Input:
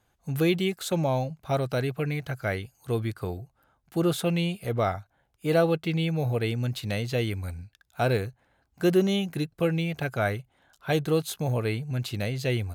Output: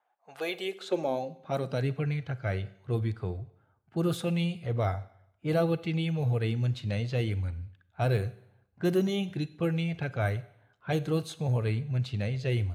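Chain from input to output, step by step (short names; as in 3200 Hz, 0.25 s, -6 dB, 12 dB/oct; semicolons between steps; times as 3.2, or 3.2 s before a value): bin magnitudes rounded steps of 15 dB; low-pass opened by the level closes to 2000 Hz, open at -20.5 dBFS; Schroeder reverb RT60 0.73 s, combs from 32 ms, DRR 16 dB; high-pass sweep 710 Hz -> 95 Hz, 0.4–2.18; gain -5 dB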